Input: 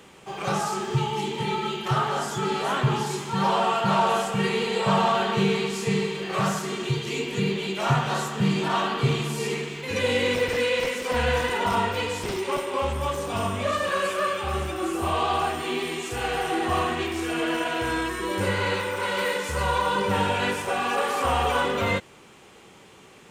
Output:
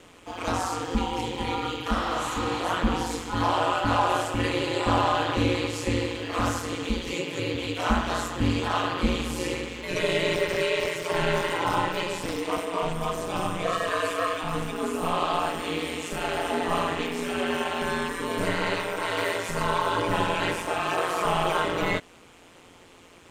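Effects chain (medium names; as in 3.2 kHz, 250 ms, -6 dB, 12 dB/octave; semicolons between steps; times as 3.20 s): 7.14–7.54 s: brick-wall FIR high-pass 190 Hz; ring modulator 87 Hz; 1.99–2.58 s: spectral replace 790–5700 Hz both; trim +1.5 dB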